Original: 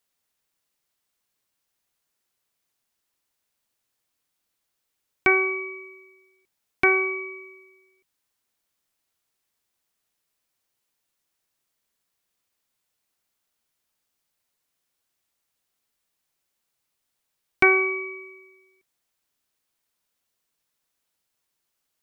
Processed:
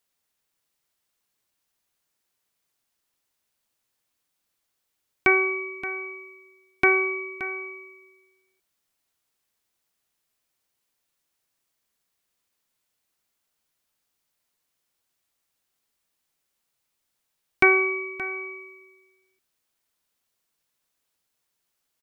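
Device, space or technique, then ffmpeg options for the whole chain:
ducked delay: -filter_complex "[0:a]asplit=3[link_01][link_02][link_03];[link_02]adelay=574,volume=-9dB[link_04];[link_03]apad=whole_len=996547[link_05];[link_04][link_05]sidechaincompress=threshold=-32dB:ratio=8:attack=16:release=539[link_06];[link_01][link_06]amix=inputs=2:normalize=0"

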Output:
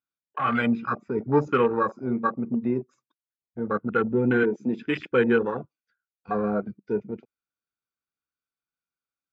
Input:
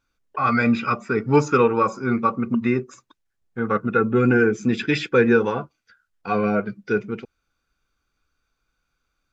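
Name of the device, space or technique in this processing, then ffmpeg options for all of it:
over-cleaned archive recording: -filter_complex "[0:a]asettb=1/sr,asplit=3[link_01][link_02][link_03];[link_01]atrim=end=4.434[link_04];[link_02]atrim=start=4.43:end=5.07,asetpts=PTS-STARTPTS,afade=type=in:duration=0.004:curve=qsin,afade=type=out:start_time=0.636:duration=0.004:curve=qsin,highpass=170[link_05];[link_03]atrim=start=5.066[link_06];[link_04][link_05]acrossfade=duration=0.004:curve1=hsin:curve2=qsin[link_07];[link_07][link_06]acrossfade=duration=0.004:curve1=qsin:curve2=hsin,highpass=120,lowpass=6200,afwtdn=0.0708,volume=-4dB"

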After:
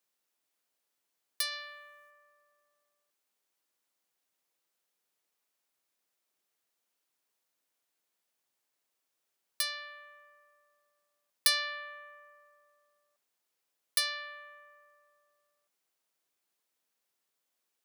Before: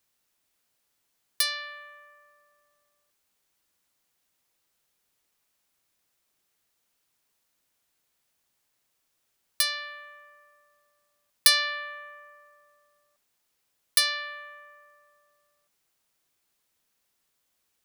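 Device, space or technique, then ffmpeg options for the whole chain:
filter by subtraction: -filter_complex "[0:a]asplit=2[link_01][link_02];[link_02]lowpass=430,volume=-1[link_03];[link_01][link_03]amix=inputs=2:normalize=0,asplit=3[link_04][link_05][link_06];[link_04]afade=type=out:start_time=1.51:duration=0.02[link_07];[link_05]bass=frequency=250:gain=14,treble=frequency=4000:gain=6,afade=type=in:start_time=1.51:duration=0.02,afade=type=out:start_time=2.09:duration=0.02[link_08];[link_06]afade=type=in:start_time=2.09:duration=0.02[link_09];[link_07][link_08][link_09]amix=inputs=3:normalize=0,volume=-7.5dB"

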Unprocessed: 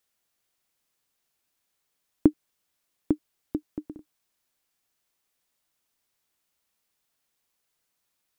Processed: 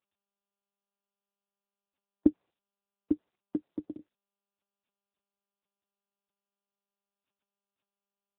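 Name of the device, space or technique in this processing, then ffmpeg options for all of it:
mobile call with aggressive noise cancelling: -filter_complex "[0:a]asettb=1/sr,asplit=3[link_01][link_02][link_03];[link_01]atrim=end=3.134[link_04];[link_02]atrim=start=3.13:end=3.68,asetpts=PTS-STARTPTS,afade=type=in:duration=0.004:curve=qsin,afade=type=out:start_time=0.546:duration=0.004:curve=qsin,lowshelf=frequency=89:gain=2.5[link_05];[link_03]atrim=start=3.676[link_06];[link_04][link_05]acrossfade=duration=0.004:curve1=hsin:curve2=qsin[link_07];[link_07][link_06]acrossfade=duration=0.004:curve1=qsin:curve2=hsin,highpass=150,afftdn=noise_reduction=21:noise_floor=-54" -ar 8000 -c:a libopencore_amrnb -b:a 10200

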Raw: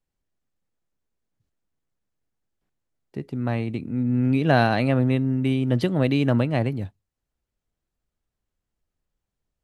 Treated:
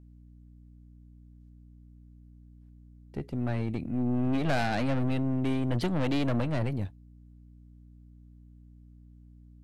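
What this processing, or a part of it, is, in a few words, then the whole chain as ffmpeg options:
valve amplifier with mains hum: -af "aeval=exprs='(tanh(15.8*val(0)+0.5)-tanh(0.5))/15.8':channel_layout=same,aeval=exprs='val(0)+0.00282*(sin(2*PI*60*n/s)+sin(2*PI*2*60*n/s)/2+sin(2*PI*3*60*n/s)/3+sin(2*PI*4*60*n/s)/4+sin(2*PI*5*60*n/s)/5)':channel_layout=same"

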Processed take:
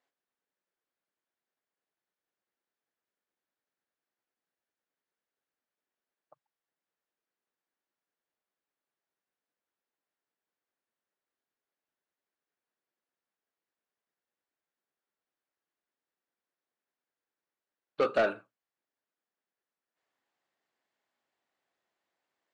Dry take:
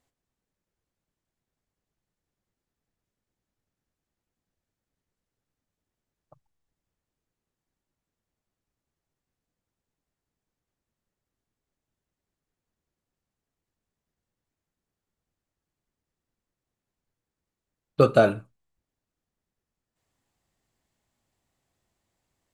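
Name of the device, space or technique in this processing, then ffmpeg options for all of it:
intercom: -af "highpass=400,lowpass=4300,equalizer=frequency=1600:width_type=o:width=0.59:gain=4,asoftclip=type=tanh:threshold=-16.5dB,volume=-3.5dB"

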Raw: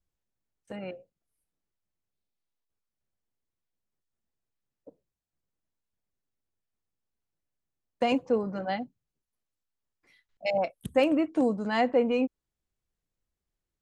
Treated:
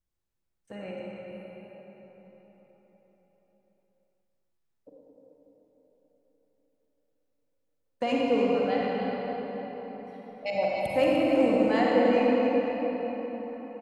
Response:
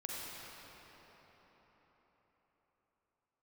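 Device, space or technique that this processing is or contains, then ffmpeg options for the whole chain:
cave: -filter_complex "[0:a]aecho=1:1:298:0.316[link_01];[1:a]atrim=start_sample=2205[link_02];[link_01][link_02]afir=irnorm=-1:irlink=0,volume=1.5dB"

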